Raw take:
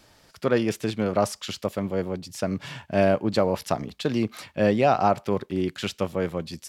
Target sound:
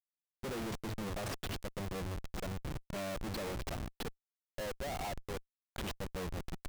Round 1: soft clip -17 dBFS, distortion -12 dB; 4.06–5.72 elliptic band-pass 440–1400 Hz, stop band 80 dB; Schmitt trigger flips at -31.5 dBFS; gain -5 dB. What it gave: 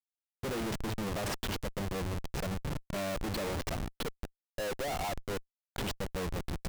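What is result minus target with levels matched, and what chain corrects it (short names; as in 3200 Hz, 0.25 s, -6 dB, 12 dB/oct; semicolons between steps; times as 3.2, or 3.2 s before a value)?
soft clip: distortion -7 dB
soft clip -26 dBFS, distortion -5 dB; 4.06–5.72 elliptic band-pass 440–1400 Hz, stop band 80 dB; Schmitt trigger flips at -31.5 dBFS; gain -5 dB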